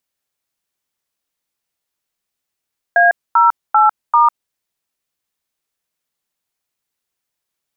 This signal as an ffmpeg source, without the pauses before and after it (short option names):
-f lavfi -i "aevalsrc='0.316*clip(min(mod(t,0.392),0.151-mod(t,0.392))/0.002,0,1)*(eq(floor(t/0.392),0)*(sin(2*PI*697*mod(t,0.392))+sin(2*PI*1633*mod(t,0.392)))+eq(floor(t/0.392),1)*(sin(2*PI*941*mod(t,0.392))+sin(2*PI*1336*mod(t,0.392)))+eq(floor(t/0.392),2)*(sin(2*PI*852*mod(t,0.392))+sin(2*PI*1336*mod(t,0.392)))+eq(floor(t/0.392),3)*(sin(2*PI*941*mod(t,0.392))+sin(2*PI*1209*mod(t,0.392))))':d=1.568:s=44100"